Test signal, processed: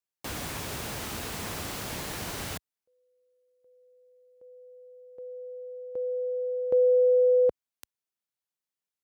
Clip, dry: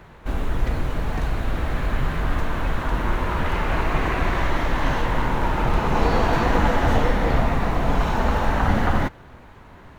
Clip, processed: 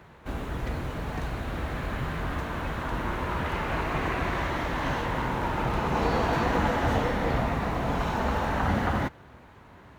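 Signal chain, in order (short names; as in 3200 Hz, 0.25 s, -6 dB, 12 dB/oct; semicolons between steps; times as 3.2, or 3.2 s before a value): HPF 60 Hz 12 dB/oct; gain -4.5 dB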